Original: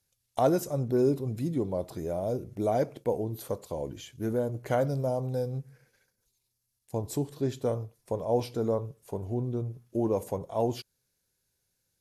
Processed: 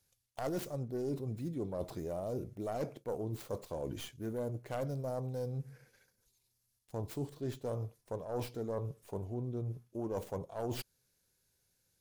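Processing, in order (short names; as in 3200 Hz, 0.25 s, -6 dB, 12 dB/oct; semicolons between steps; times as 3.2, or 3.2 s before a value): tracing distortion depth 0.41 ms; reverse; compressor 5:1, threshold -37 dBFS, peak gain reduction 16 dB; reverse; gain +1 dB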